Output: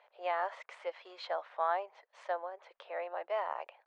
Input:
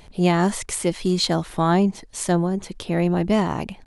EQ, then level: elliptic high-pass 550 Hz, stop band 60 dB; low-pass 2 kHz 12 dB/octave; distance through air 82 m; -8.0 dB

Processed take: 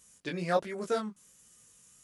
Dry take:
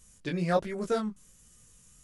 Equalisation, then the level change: high-pass 320 Hz 6 dB/octave; 0.0 dB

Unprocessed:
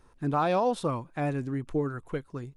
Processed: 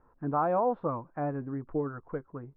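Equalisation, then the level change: low-pass 1.4 kHz 24 dB/octave; bass shelf 240 Hz -7 dB; band-stop 380 Hz, Q 12; 0.0 dB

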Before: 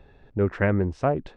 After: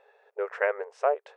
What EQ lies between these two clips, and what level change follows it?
brick-wall FIR high-pass 410 Hz; peaking EQ 3.9 kHz -7 dB 1 oct; 0.0 dB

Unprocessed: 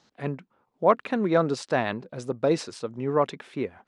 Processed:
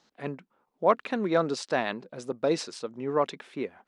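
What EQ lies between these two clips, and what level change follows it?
dynamic bell 4.9 kHz, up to +4 dB, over -45 dBFS, Q 0.73; peaking EQ 100 Hz -14 dB 0.79 oct; -2.5 dB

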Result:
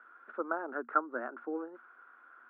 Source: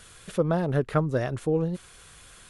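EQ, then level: rippled Chebyshev high-pass 230 Hz, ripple 6 dB; four-pole ladder low-pass 1.5 kHz, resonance 80%; distance through air 77 m; +4.0 dB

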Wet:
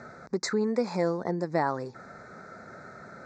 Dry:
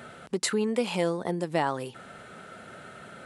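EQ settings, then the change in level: Butterworth band-stop 3 kHz, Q 1.3; steep low-pass 6.8 kHz 48 dB/octave; 0.0 dB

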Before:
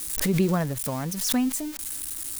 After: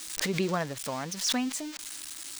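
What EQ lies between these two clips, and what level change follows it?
distance through air 150 m; RIAA curve recording; 0.0 dB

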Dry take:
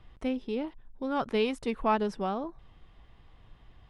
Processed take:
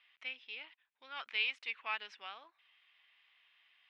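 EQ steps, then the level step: resonant high-pass 2.4 kHz, resonance Q 2.4; distance through air 200 m; 0.0 dB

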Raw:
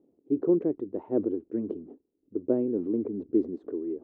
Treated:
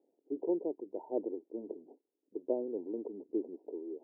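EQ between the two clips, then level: high-pass 590 Hz 12 dB/octave; brick-wall FIR low-pass 1 kHz; 0.0 dB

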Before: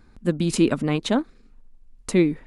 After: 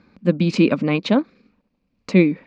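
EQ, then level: distance through air 61 m; cabinet simulation 110–6200 Hz, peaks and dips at 190 Hz +9 dB, 280 Hz +4 dB, 540 Hz +8 dB, 1.1 kHz +4 dB, 2.4 kHz +10 dB, 4.5 kHz +6 dB; 0.0 dB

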